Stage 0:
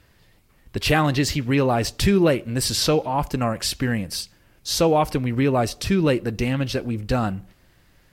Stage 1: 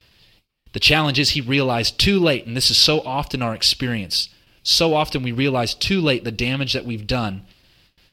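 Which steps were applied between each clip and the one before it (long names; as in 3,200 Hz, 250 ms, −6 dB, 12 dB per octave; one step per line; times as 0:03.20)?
noise gate with hold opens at −46 dBFS
harmonic generator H 7 −37 dB, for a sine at −7 dBFS
flat-topped bell 3,600 Hz +11.5 dB 1.3 octaves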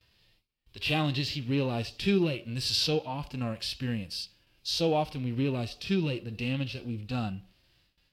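harmonic and percussive parts rebalanced percussive −16 dB
level −7 dB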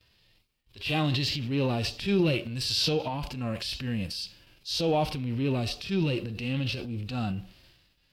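transient designer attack −6 dB, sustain +8 dB
level +1.5 dB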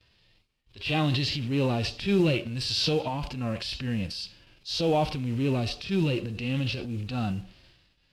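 noise that follows the level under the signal 25 dB
high-frequency loss of the air 51 metres
level +1.5 dB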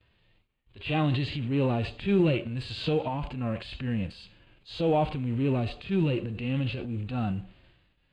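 moving average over 8 samples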